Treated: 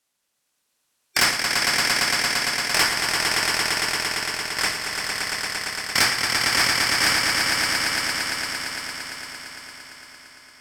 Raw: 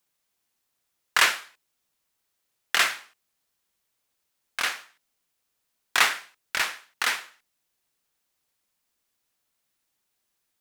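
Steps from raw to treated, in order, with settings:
neighbouring bands swapped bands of 2,000 Hz
low-pass filter 9,800 Hz 12 dB per octave
high-shelf EQ 6,700 Hz +5.5 dB
feedback delay with all-pass diffusion 594 ms, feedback 51%, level −15 dB
ring modulation 1,600 Hz
low-shelf EQ 69 Hz −7.5 dB
echo that builds up and dies away 114 ms, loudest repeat 5, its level −5.5 dB
sine wavefolder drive 10 dB, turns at −2.5 dBFS
level −8 dB

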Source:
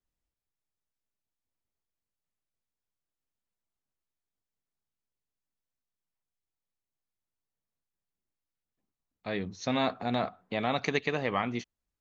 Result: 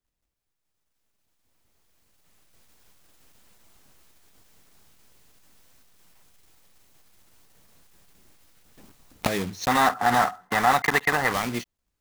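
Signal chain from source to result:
one scale factor per block 3 bits
camcorder AGC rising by 11 dB per second
gain on a spectral selection 0:09.68–0:11.32, 710–2,100 Hz +11 dB
in parallel at −7 dB: soft clipping −22 dBFS, distortion −8 dB

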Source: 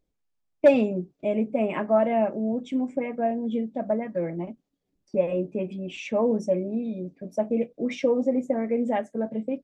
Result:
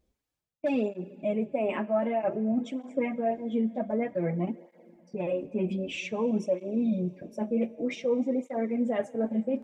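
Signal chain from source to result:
reversed playback
downward compressor 5 to 1, threshold −30 dBFS, peak gain reduction 16.5 dB
reversed playback
convolution reverb RT60 3.2 s, pre-delay 49 ms, DRR 19.5 dB
through-zero flanger with one copy inverted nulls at 0.53 Hz, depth 7.3 ms
level +7 dB

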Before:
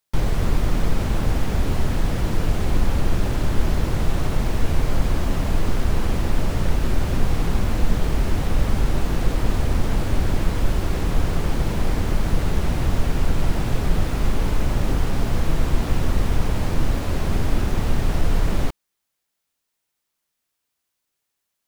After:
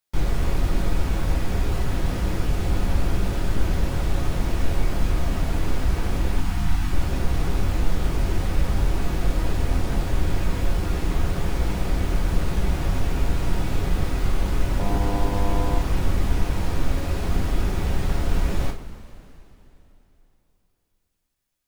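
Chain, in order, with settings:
0:06.36–0:06.92: time-frequency box erased 340–680 Hz
0:14.78–0:15.78: hum with harmonics 100 Hz, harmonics 10, −28 dBFS 0 dB per octave
coupled-rooms reverb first 0.28 s, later 3.3 s, from −19 dB, DRR 0 dB
level −5 dB

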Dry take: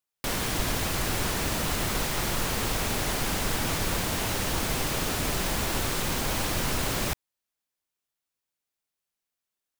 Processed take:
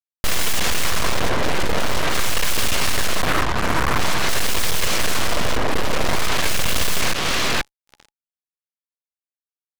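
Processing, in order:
auto-filter low-pass sine 0.48 Hz 480–3,300 Hz
tape delay 477 ms, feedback 25%, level −16 dB, low-pass 3,000 Hz
downward compressor 2 to 1, threshold −33 dBFS, peak gain reduction 6.5 dB
square-wave tremolo 1.4 Hz, depth 60%, duty 80%
comb filter 1.8 ms, depth 32%
fuzz pedal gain 47 dB, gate −51 dBFS
0:03.24–0:03.98: Butterworth high-pass 200 Hz 36 dB per octave
full-wave rectification
notch filter 840 Hz, Q 28

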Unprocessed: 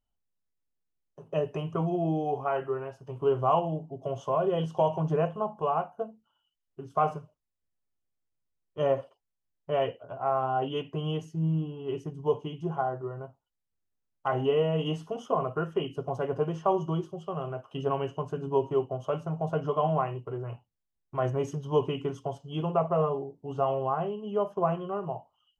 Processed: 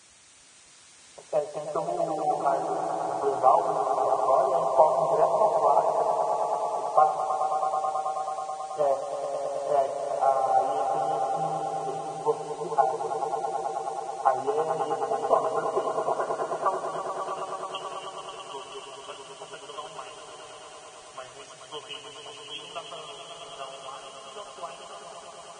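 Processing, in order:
band-pass filter sweep 800 Hz → 3,600 Hz, 0:15.82–0:17.83
transient designer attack +7 dB, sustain +2 dB
in parallel at −5.5 dB: bit-depth reduction 8 bits, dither triangular
on the sum: echo that builds up and dies away 108 ms, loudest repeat 5, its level −9.5 dB
Ogg Vorbis 16 kbit/s 22,050 Hz

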